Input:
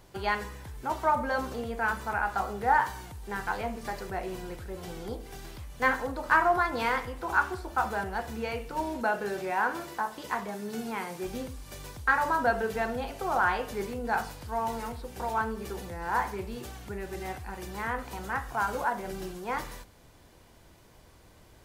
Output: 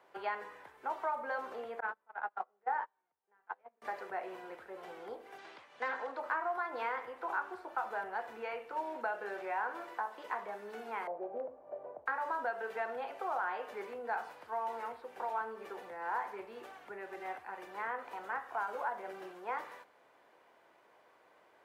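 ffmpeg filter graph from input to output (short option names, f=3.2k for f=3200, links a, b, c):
-filter_complex "[0:a]asettb=1/sr,asplit=3[a][b][c];[a]atrim=end=1.804[d];[b]atrim=start=1.8:end=3.82,asetpts=PTS-STARTPTS,afade=t=in:d=0.004:c=qsin,afade=t=out:st=2.016:d=0.004:c=qsin,aemphasis=mode=reproduction:type=75fm,agate=range=-33dB:threshold=-28dB:ratio=16:release=100:detection=peak[e];[c]atrim=start=3.816[f];[d][e]acrossfade=d=0.004:c1=hsin:c2=qsin[g];[g][f]acrossfade=d=0.004:c1=qsin:c2=hsin,asettb=1/sr,asplit=3[h][i][j];[h]atrim=end=5.384[k];[i]atrim=start=5.38:end=6.2,asetpts=PTS-STARTPTS,afade=t=in:d=0.004:c=qsin,afade=t=out:st=0.816:d=0.004:c=qsin,equalizer=f=4.2k:w=0.66:g=6,asoftclip=type=hard:threshold=-24dB,highpass=120,lowpass=7.5k[l];[j]atrim=start=6.196[m];[k][l]acrossfade=d=0.004:c1=hsin:c2=qsin[n];[n][m]acrossfade=d=0.004:c1=qsin:c2=hsin,asettb=1/sr,asplit=3[o][p][q];[o]atrim=end=11.074[r];[p]atrim=start=11.07:end=12.06,asetpts=PTS-STARTPTS,afade=t=in:d=0.004:c=qsin,afade=t=out:st=0.986:d=0.004:c=qsin,lowpass=f=630:t=q:w=5.2,asoftclip=type=hard:threshold=-22.5dB[s];[q]atrim=start=12.056[t];[r][s]acrossfade=d=0.004:c1=hsin:c2=qsin[u];[u][t]acrossfade=d=0.004:c1=qsin:c2=hsin,highpass=220,acrossover=split=430 2500:gain=0.126 1 0.112[v][w][x];[v][w][x]amix=inputs=3:normalize=0,acrossover=split=700|2800[y][z][aa];[y]acompressor=threshold=-39dB:ratio=4[ab];[z]acompressor=threshold=-36dB:ratio=4[ac];[aa]acompressor=threshold=-52dB:ratio=4[ad];[ab][ac][ad]amix=inputs=3:normalize=0,volume=-1.5dB"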